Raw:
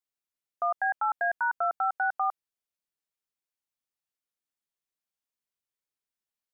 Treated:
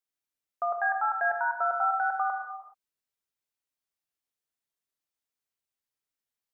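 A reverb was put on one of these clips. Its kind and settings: non-linear reverb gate 0.45 s falling, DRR 2.5 dB; gain -1.5 dB

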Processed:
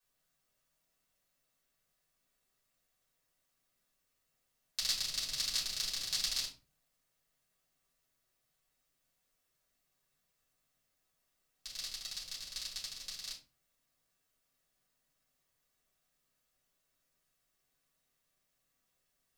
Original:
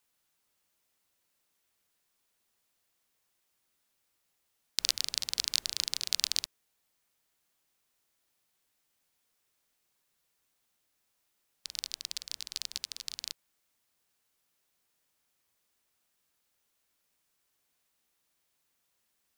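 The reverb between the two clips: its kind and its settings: shoebox room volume 160 m³, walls furnished, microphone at 5.4 m; gain -12.5 dB

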